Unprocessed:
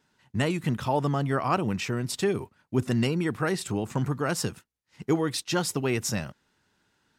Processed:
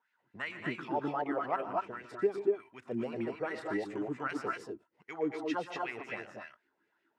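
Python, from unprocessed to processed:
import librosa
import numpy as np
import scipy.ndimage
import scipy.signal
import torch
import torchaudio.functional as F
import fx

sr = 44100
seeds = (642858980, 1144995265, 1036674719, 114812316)

y = fx.wah_lfo(x, sr, hz=2.6, low_hz=320.0, high_hz=2200.0, q=3.8)
y = fx.echo_multitap(y, sr, ms=(118, 148, 227, 242, 245), db=(-13.5, -14.0, -9.0, -5.5, -4.0))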